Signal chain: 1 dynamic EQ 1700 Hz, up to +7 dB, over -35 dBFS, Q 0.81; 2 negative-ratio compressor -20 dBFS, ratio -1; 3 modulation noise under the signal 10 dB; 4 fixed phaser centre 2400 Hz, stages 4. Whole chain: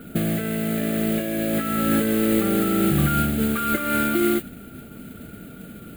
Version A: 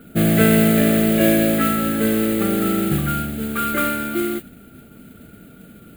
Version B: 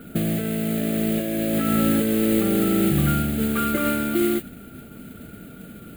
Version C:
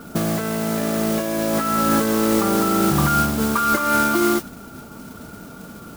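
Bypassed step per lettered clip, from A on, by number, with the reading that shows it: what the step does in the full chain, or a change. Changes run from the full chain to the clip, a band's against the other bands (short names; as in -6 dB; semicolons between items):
2, crest factor change +2.5 dB; 1, 1 kHz band -3.0 dB; 4, loudness change +2.5 LU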